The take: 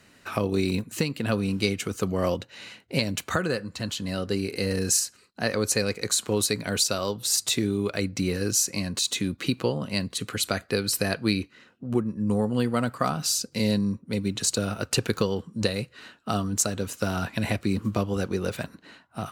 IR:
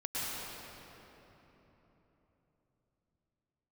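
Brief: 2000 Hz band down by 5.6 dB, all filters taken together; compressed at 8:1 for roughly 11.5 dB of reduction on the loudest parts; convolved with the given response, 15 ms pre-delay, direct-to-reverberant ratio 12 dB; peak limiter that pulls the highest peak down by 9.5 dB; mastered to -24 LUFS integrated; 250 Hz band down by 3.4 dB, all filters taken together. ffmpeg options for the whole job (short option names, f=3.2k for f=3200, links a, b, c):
-filter_complex "[0:a]equalizer=f=250:t=o:g=-4.5,equalizer=f=2k:t=o:g=-7.5,acompressor=threshold=-32dB:ratio=8,alimiter=level_in=1dB:limit=-24dB:level=0:latency=1,volume=-1dB,asplit=2[a][b];[1:a]atrim=start_sample=2205,adelay=15[c];[b][c]afir=irnorm=-1:irlink=0,volume=-17.5dB[d];[a][d]amix=inputs=2:normalize=0,volume=13.5dB"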